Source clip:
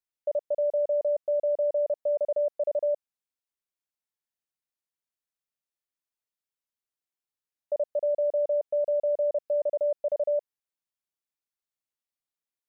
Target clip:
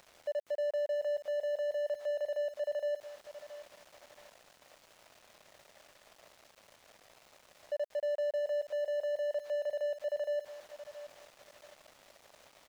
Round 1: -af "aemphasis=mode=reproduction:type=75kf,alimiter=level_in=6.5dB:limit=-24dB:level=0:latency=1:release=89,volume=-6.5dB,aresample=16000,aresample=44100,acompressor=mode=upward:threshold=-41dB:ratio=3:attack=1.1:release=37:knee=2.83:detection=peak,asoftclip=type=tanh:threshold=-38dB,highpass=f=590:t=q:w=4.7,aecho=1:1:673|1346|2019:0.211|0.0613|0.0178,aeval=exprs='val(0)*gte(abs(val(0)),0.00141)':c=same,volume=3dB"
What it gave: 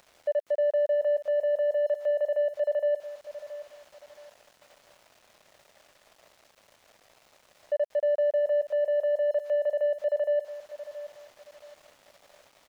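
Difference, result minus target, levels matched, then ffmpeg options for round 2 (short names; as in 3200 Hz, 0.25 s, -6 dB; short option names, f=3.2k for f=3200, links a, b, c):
soft clip: distortion -6 dB
-af "aemphasis=mode=reproduction:type=75kf,alimiter=level_in=6.5dB:limit=-24dB:level=0:latency=1:release=89,volume=-6.5dB,aresample=16000,aresample=44100,acompressor=mode=upward:threshold=-41dB:ratio=3:attack=1.1:release=37:knee=2.83:detection=peak,asoftclip=type=tanh:threshold=-47dB,highpass=f=590:t=q:w=4.7,aecho=1:1:673|1346|2019:0.211|0.0613|0.0178,aeval=exprs='val(0)*gte(abs(val(0)),0.00141)':c=same,volume=3dB"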